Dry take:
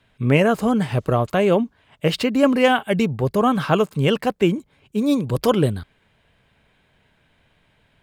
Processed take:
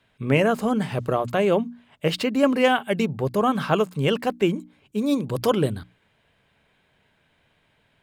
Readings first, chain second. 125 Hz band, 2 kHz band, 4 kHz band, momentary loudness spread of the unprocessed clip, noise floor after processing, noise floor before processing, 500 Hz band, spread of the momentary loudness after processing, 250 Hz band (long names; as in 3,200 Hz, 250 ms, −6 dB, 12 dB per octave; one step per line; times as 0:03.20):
−5.5 dB, −2.5 dB, −2.5 dB, 7 LU, −66 dBFS, −63 dBFS, −2.5 dB, 7 LU, −4.0 dB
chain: low-shelf EQ 70 Hz −8.5 dB
mains-hum notches 60/120/180/240/300 Hz
level −2.5 dB